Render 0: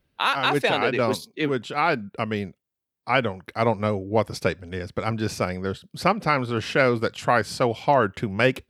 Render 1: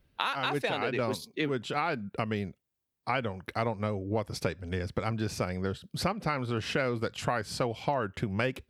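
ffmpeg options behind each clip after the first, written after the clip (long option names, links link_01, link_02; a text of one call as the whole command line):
ffmpeg -i in.wav -af "lowshelf=frequency=91:gain=7.5,acompressor=threshold=-28dB:ratio=4" out.wav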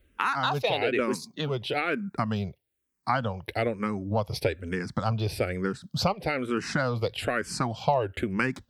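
ffmpeg -i in.wav -filter_complex "[0:a]asplit=2[link_01][link_02];[link_02]afreqshift=-1.1[link_03];[link_01][link_03]amix=inputs=2:normalize=1,volume=6.5dB" out.wav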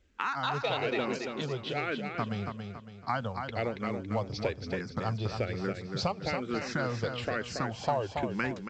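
ffmpeg -i in.wav -filter_complex "[0:a]asplit=2[link_01][link_02];[link_02]aecho=0:1:279|558|837|1116|1395:0.501|0.2|0.0802|0.0321|0.0128[link_03];[link_01][link_03]amix=inputs=2:normalize=0,volume=-5.5dB" -ar 16000 -c:a pcm_mulaw out.wav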